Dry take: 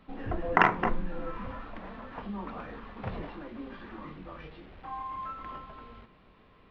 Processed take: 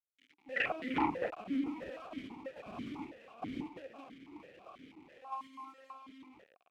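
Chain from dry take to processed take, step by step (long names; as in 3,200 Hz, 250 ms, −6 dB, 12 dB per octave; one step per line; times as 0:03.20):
0:01.19–0:02.65: sub-octave generator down 2 octaves, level +1 dB
dynamic equaliser 650 Hz, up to −5 dB, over −46 dBFS, Q 0.96
mains hum 60 Hz, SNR 31 dB
multiband delay without the direct sound highs, lows 390 ms, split 1,700 Hz
linear-prediction vocoder at 8 kHz pitch kept
single-tap delay 304 ms −13.5 dB
bit reduction 8 bits
noise gate −40 dBFS, range −8 dB
asymmetric clip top −28.5 dBFS
formant filter that steps through the vowels 6.1 Hz
level +11 dB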